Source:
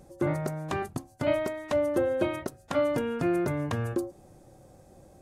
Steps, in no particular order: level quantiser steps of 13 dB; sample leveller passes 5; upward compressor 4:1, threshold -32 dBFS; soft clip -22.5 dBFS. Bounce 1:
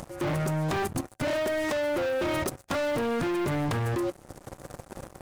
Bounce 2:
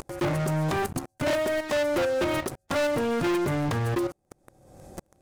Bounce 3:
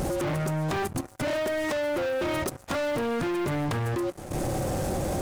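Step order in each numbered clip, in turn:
sample leveller > upward compressor > level quantiser > soft clip; level quantiser > sample leveller > upward compressor > soft clip; upward compressor > sample leveller > level quantiser > soft clip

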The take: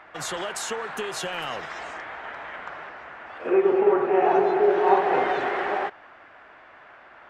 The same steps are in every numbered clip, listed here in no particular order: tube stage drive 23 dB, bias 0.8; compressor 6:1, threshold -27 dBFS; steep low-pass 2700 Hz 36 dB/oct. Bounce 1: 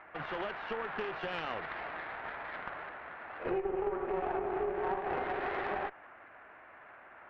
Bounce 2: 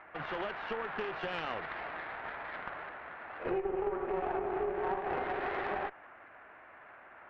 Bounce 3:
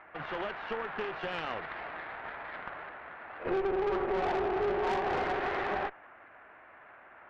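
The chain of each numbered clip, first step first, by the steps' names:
compressor > steep low-pass > tube stage; steep low-pass > compressor > tube stage; steep low-pass > tube stage > compressor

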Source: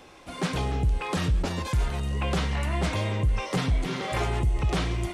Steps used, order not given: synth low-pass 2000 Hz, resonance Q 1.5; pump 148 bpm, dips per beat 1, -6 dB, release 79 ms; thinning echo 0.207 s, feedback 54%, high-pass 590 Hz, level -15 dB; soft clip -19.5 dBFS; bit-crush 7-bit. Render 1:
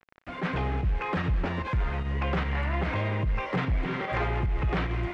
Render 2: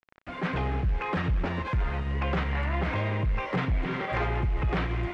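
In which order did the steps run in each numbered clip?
bit-crush > synth low-pass > soft clip > thinning echo > pump; pump > thinning echo > bit-crush > synth low-pass > soft clip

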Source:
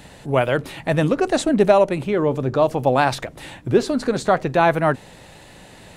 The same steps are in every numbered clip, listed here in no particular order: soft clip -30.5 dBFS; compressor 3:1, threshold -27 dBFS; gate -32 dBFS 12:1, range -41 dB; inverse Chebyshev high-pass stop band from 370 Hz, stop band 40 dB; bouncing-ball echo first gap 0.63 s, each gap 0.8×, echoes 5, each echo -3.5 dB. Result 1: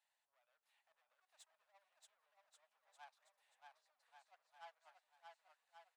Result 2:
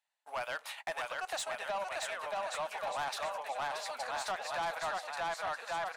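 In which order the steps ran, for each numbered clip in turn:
compressor > soft clip > inverse Chebyshev high-pass > gate > bouncing-ball echo; gate > bouncing-ball echo > compressor > inverse Chebyshev high-pass > soft clip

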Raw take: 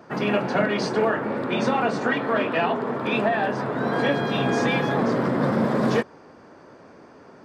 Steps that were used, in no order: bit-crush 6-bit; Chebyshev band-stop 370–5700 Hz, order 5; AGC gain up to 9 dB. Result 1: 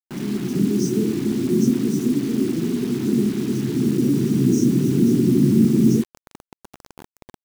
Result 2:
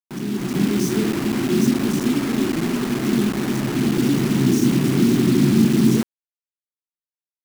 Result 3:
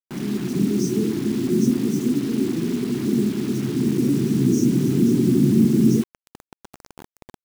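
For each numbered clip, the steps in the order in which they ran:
Chebyshev band-stop > AGC > bit-crush; Chebyshev band-stop > bit-crush > AGC; AGC > Chebyshev band-stop > bit-crush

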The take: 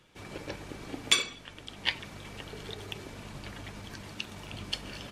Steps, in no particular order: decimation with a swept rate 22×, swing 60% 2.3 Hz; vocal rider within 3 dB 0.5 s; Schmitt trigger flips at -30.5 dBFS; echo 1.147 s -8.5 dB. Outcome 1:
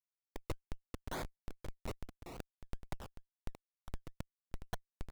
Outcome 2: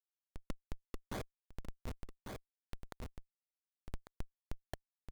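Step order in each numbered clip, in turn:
Schmitt trigger > vocal rider > echo > decimation with a swept rate; decimation with a swept rate > Schmitt trigger > echo > vocal rider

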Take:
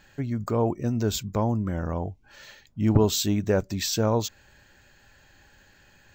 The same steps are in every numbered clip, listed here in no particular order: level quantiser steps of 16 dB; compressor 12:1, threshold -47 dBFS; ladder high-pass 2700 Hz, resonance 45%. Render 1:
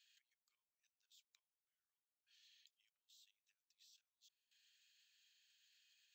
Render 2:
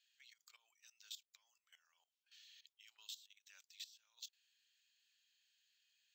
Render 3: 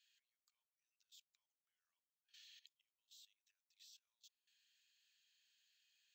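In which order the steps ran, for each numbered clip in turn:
compressor > level quantiser > ladder high-pass; ladder high-pass > compressor > level quantiser; compressor > ladder high-pass > level quantiser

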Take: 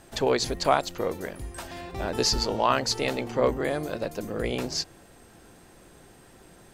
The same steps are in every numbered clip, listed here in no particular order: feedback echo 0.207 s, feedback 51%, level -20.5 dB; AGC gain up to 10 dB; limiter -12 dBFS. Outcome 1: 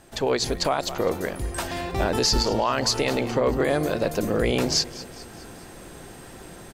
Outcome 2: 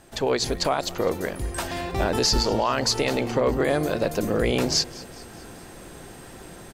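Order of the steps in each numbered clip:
AGC > feedback echo > limiter; AGC > limiter > feedback echo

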